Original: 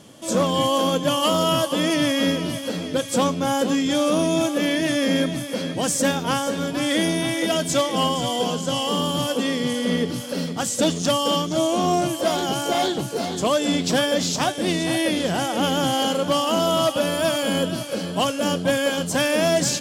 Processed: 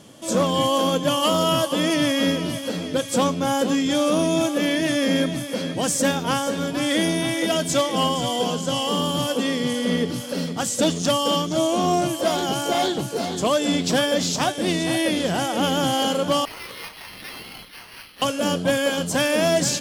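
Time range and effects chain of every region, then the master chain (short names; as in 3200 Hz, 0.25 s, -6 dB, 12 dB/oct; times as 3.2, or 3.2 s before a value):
16.45–18.22 Butterworth band-pass 5500 Hz, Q 1.9 + careless resampling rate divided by 6×, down none, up hold
whole clip: dry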